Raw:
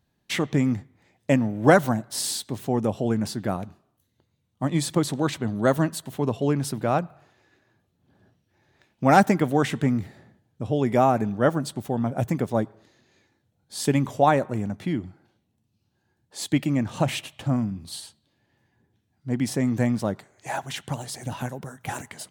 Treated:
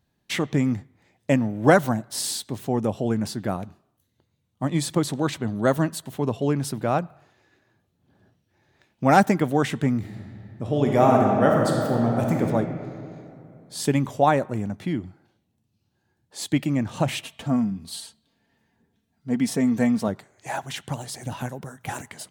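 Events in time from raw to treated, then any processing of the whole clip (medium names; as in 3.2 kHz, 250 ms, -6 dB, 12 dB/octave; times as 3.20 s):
9.98–12.42 s: reverb throw, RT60 2.8 s, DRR -0.5 dB
17.24–20.08 s: comb 4.4 ms, depth 58%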